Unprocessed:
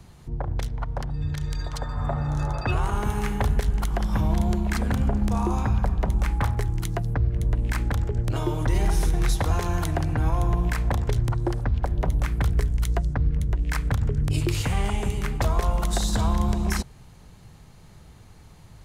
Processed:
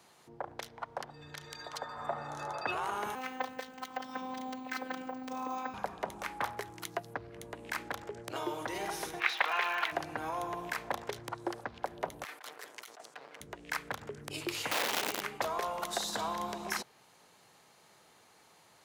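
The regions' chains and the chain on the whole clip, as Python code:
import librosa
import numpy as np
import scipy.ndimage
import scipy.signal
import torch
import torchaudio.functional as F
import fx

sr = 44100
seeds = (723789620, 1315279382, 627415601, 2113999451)

y = fx.chain(x, sr, fx.air_absorb(metres=54.0),
    fx.robotise(hz=258.0),
    fx.resample_bad(factor=2, down='filtered', up='hold'), at=(3.15, 5.74))
y = fx.curve_eq(y, sr, hz=(140.0, 220.0, 2500.0, 8500.0), db=(0, -14, 14, -17), at=(9.19, 9.91), fade=0.02)
y = fx.dmg_crackle(y, sr, seeds[0], per_s=120.0, level_db=-29.0, at=(9.19, 9.91), fade=0.02)
y = fx.brickwall_highpass(y, sr, low_hz=180.0, at=(9.19, 9.91), fade=0.02)
y = fx.chain(y, sr, fx.lower_of_two(delay_ms=6.7),
    fx.highpass(hz=720.0, slope=12),
    fx.over_compress(threshold_db=-42.0, ratio=-1.0), at=(12.24, 13.41))
y = fx.chain(y, sr, fx.lowpass(hz=6900.0, slope=12),
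    fx.high_shelf(hz=3800.0, db=4.0),
    fx.overflow_wrap(gain_db=21.5), at=(14.71, 15.22))
y = scipy.signal.sosfilt(scipy.signal.butter(2, 470.0, 'highpass', fs=sr, output='sos'), y)
y = fx.dynamic_eq(y, sr, hz=8300.0, q=1.5, threshold_db=-54.0, ratio=4.0, max_db=-5)
y = y * 10.0 ** (-3.5 / 20.0)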